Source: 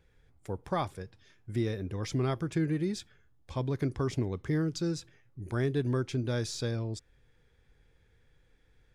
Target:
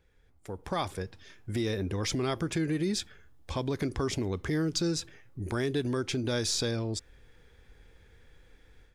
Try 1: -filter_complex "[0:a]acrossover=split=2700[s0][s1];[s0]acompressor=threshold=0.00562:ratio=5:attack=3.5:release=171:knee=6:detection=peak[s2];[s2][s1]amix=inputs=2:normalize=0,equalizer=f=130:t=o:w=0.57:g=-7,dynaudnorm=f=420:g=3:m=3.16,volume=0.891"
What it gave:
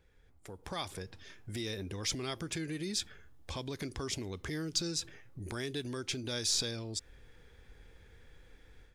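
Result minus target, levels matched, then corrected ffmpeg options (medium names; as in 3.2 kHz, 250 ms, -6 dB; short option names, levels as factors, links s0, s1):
compression: peak gain reduction +9 dB
-filter_complex "[0:a]acrossover=split=2700[s0][s1];[s0]acompressor=threshold=0.0211:ratio=5:attack=3.5:release=171:knee=6:detection=peak[s2];[s2][s1]amix=inputs=2:normalize=0,equalizer=f=130:t=o:w=0.57:g=-7,dynaudnorm=f=420:g=3:m=3.16,volume=0.891"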